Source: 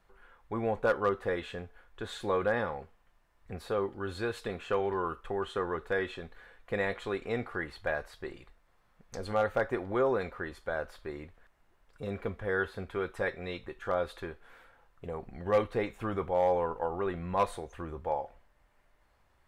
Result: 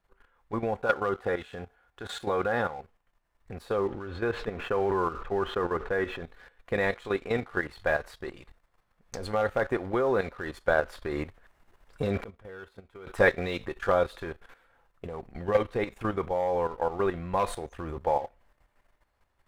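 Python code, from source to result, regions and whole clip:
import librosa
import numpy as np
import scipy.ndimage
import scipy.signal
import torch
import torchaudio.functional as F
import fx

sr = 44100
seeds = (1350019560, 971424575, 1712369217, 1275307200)

y = fx.chain(x, sr, fx.highpass(hz=41.0, slope=12),
    fx.small_body(hz=(760.0, 1400.0), ring_ms=35, db=8), at=(0.72, 2.81))
y = fx.chain(y, sr, fx.block_float(bits=5),
    fx.lowpass(hz=2100.0, slope=12),
    fx.sustainer(db_per_s=58.0), at=(3.76, 6.24))
y = fx.chain(y, sr, fx.notch(hz=1700.0, q=11.0),
    fx.leveller(passes=2),
    fx.gate_flip(shuts_db=-32.0, range_db=-25), at=(12.23, 13.07))
y = fx.level_steps(y, sr, step_db=11)
y = fx.leveller(y, sr, passes=1)
y = fx.rider(y, sr, range_db=10, speed_s=2.0)
y = F.gain(torch.from_numpy(y), 3.5).numpy()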